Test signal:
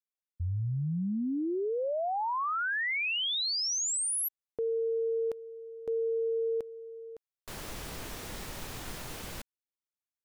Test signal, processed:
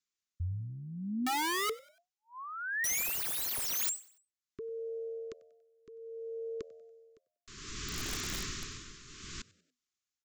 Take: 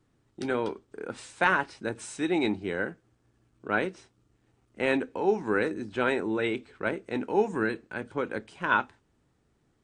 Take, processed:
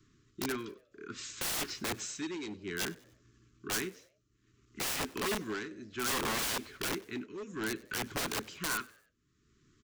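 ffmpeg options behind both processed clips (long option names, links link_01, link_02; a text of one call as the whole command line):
ffmpeg -i in.wav -filter_complex "[0:a]asuperstop=centerf=670:order=20:qfactor=1.1,aresample=16000,asoftclip=type=hard:threshold=-26dB,aresample=44100,tremolo=f=0.61:d=0.84,crystalizer=i=2:c=0,aeval=exprs='(mod(39.8*val(0)+1,2)-1)/39.8':channel_layout=same,asplit=2[link_01][link_02];[link_02]asplit=3[link_03][link_04][link_05];[link_03]adelay=95,afreqshift=81,volume=-22.5dB[link_06];[link_04]adelay=190,afreqshift=162,volume=-29.8dB[link_07];[link_05]adelay=285,afreqshift=243,volume=-37.2dB[link_08];[link_06][link_07][link_08]amix=inputs=3:normalize=0[link_09];[link_01][link_09]amix=inputs=2:normalize=0,volume=3.5dB" out.wav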